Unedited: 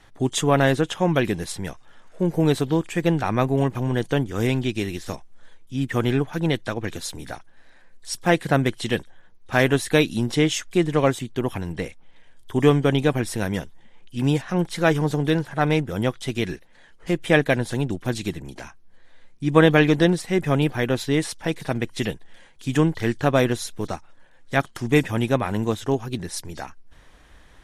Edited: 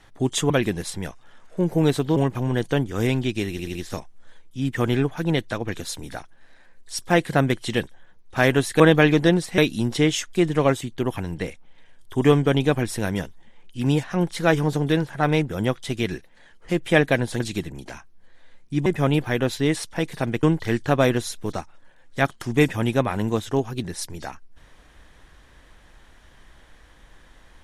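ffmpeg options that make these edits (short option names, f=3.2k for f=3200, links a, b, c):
-filter_complex "[0:a]asplit=11[a][b][c][d][e][f][g][h][i][j][k];[a]atrim=end=0.502[l];[b]atrim=start=1.118:end=2.782[m];[c]atrim=start=3.558:end=4.992[n];[d]atrim=start=4.908:end=4.992[o];[e]atrim=start=4.908:end=4.992[p];[f]atrim=start=4.908:end=9.962[q];[g]atrim=start=19.558:end=20.342[r];[h]atrim=start=9.958:end=17.782[s];[i]atrim=start=18.098:end=19.562[t];[j]atrim=start=20.338:end=21.912[u];[k]atrim=start=22.778[v];[l][m]acrossfade=d=0.004:c1=hsin:c2=hsin[w];[w][n]acrossfade=d=0.004:c1=hsin:c2=hsin[x];[x][o]acrossfade=d=0.004:c1=hsin:c2=hsin[y];[y][p]acrossfade=d=0.004:c1=hsin:c2=hsin[z];[z][q]acrossfade=d=0.004:c1=hsin:c2=hsin[aa];[aa][r]acrossfade=d=0.004:c1=hsin:c2=hsin[ab];[ab][s]acrossfade=d=0.004:c1=hsin:c2=hsin[ac];[ac][t]acrossfade=d=0.004:c1=hsin:c2=hsin[ad];[ad][u]acrossfade=d=0.004:c1=hsin:c2=hsin[ae];[ae][v]acrossfade=d=0.004:c1=hsin:c2=hsin"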